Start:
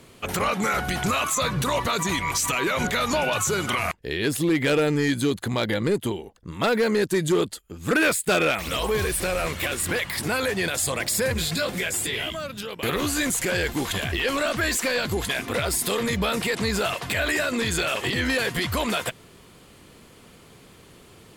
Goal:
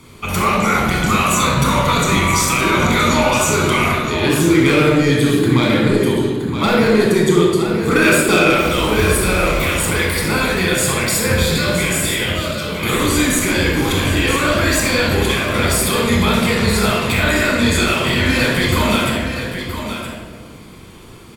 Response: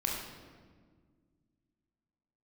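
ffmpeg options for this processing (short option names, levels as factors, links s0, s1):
-filter_complex "[0:a]aecho=1:1:970:0.355[s0];[1:a]atrim=start_sample=2205[s1];[s0][s1]afir=irnorm=-1:irlink=0,volume=1.41"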